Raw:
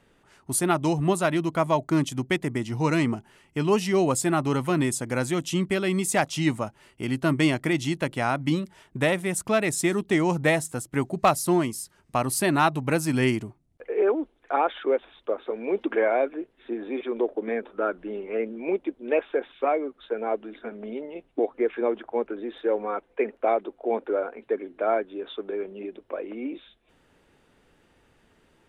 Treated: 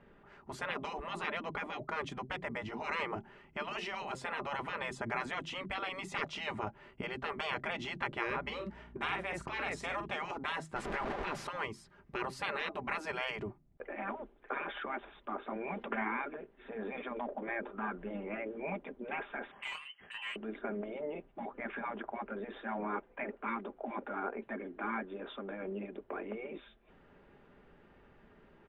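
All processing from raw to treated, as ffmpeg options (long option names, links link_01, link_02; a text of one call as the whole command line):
ffmpeg -i in.wav -filter_complex "[0:a]asettb=1/sr,asplit=3[link_01][link_02][link_03];[link_01]atrim=end=8.264[link_04];[link_02]atrim=start=8.26:end=10.1,asetpts=PTS-STARTPTS,afade=type=in:duration=0.004:curve=qsin,afade=type=out:start_time=1.836:duration=0.004:curve=qsin,bandreject=frequency=3500:width=22,aeval=exprs='val(0)+0.00158*(sin(2*PI*60*n/s)+sin(2*PI*2*60*n/s)/2+sin(2*PI*3*60*n/s)/3+sin(2*PI*4*60*n/s)/4+sin(2*PI*5*60*n/s)/5)':channel_layout=same,asplit=2[link_05][link_06];[link_06]adelay=46,volume=-9dB[link_07];[link_05][link_07]amix=inputs=2:normalize=0,atrim=end_sample=81144[link_08];[link_03]atrim=start=10.096[link_09];[link_04][link_08]acrossfade=duration=0.004:curve1=hsin:curve2=qsin[link_10];[link_10][link_09]acrossfade=duration=0.004:curve1=qsin:curve2=hsin,asettb=1/sr,asplit=3[link_11][link_12][link_13];[link_11]atrim=end=10.764[link_14];[link_12]atrim=start=10.76:end=11.47,asetpts=PTS-STARTPTS,afade=type=in:duration=0.004:curve=qsin,afade=type=out:start_time=0.706:duration=0.004:curve=qsin,aeval=exprs='val(0)+0.5*0.0447*sgn(val(0))':channel_layout=same,acompressor=threshold=-24dB:ratio=3:attack=3.2:release=140:knee=1:detection=peak[link_15];[link_13]atrim=start=11.466[link_16];[link_14][link_15]acrossfade=duration=0.004:curve1=hsin:curve2=qsin[link_17];[link_17][link_16]acrossfade=duration=0.004:curve1=qsin:curve2=hsin,asettb=1/sr,asplit=3[link_18][link_19][link_20];[link_18]atrim=end=19.514[link_21];[link_19]atrim=start=19.51:end=20.36,asetpts=PTS-STARTPTS,afade=type=in:duration=0.004:curve=qsin,afade=type=out:start_time=0.846:duration=0.004:curve=qsin,lowpass=frequency=2800:width_type=q:width=0.5098,lowpass=frequency=2800:width_type=q:width=0.6013,lowpass=frequency=2800:width_type=q:width=0.9,lowpass=frequency=2800:width_type=q:width=2.563,afreqshift=-3300,volume=28dB,asoftclip=hard,volume=-28dB,asplit=2[link_22][link_23];[link_23]adelay=24,volume=-12.5dB[link_24];[link_22][link_24]amix=inputs=2:normalize=0,atrim=end_sample=37485[link_25];[link_20]atrim=start=20.356[link_26];[link_21][link_25]acrossfade=duration=0.004:curve1=hsin:curve2=qsin[link_27];[link_27][link_26]acrossfade=duration=0.004:curve1=qsin:curve2=hsin,afftfilt=real='re*lt(hypot(re,im),0.112)':imag='im*lt(hypot(re,im),0.112)':win_size=1024:overlap=0.75,lowpass=2000,aecho=1:1:5:0.33,volume=1dB" out.wav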